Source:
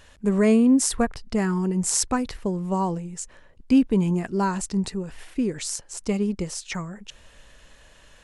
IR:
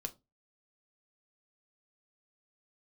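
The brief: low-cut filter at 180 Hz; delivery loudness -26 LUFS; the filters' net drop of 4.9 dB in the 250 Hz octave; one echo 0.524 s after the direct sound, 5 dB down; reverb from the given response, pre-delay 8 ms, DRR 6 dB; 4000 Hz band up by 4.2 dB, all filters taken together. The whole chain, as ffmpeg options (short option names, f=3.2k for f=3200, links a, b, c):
-filter_complex "[0:a]highpass=180,equalizer=f=250:t=o:g=-4,equalizer=f=4k:t=o:g=6,aecho=1:1:524:0.562,asplit=2[a][b];[1:a]atrim=start_sample=2205,adelay=8[c];[b][c]afir=irnorm=-1:irlink=0,volume=-4.5dB[d];[a][d]amix=inputs=2:normalize=0,volume=-1.5dB"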